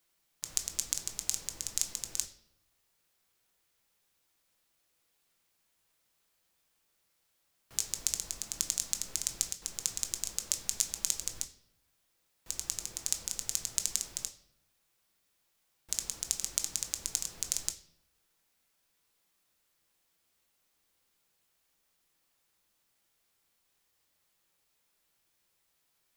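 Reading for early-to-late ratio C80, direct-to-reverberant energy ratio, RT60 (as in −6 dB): 16.0 dB, 6.0 dB, 0.70 s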